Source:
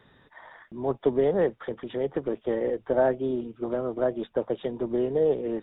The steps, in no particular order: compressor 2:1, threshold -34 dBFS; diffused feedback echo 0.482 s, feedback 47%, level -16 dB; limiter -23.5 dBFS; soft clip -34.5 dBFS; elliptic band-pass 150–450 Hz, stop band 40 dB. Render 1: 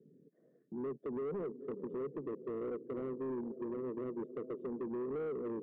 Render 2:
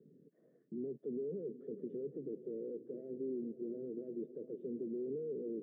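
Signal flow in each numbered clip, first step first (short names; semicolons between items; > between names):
elliptic band-pass > limiter > diffused feedback echo > compressor > soft clip; limiter > compressor > diffused feedback echo > soft clip > elliptic band-pass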